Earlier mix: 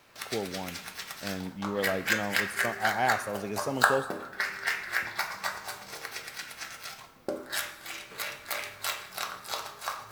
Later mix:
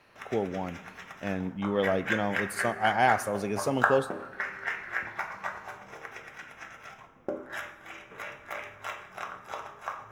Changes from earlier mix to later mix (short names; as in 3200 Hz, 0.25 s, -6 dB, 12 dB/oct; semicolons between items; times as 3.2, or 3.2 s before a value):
speech +4.0 dB; background: add running mean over 10 samples